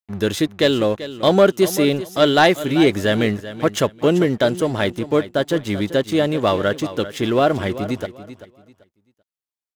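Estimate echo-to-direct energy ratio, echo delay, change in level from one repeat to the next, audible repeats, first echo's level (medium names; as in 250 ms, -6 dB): -13.5 dB, 388 ms, -12.5 dB, 2, -14.0 dB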